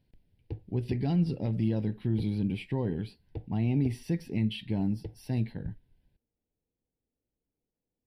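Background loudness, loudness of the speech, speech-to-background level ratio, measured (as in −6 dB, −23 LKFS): −46.0 LKFS, −31.5 LKFS, 14.5 dB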